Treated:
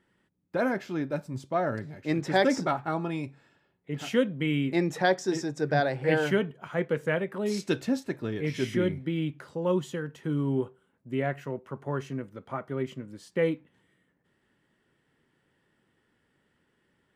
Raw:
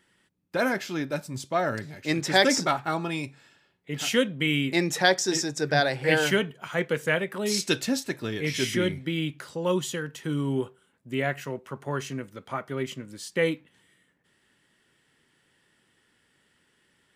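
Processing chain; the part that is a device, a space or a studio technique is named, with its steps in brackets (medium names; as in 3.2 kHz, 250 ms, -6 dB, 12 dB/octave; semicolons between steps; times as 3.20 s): through cloth (treble shelf 2.1 kHz -14.5 dB)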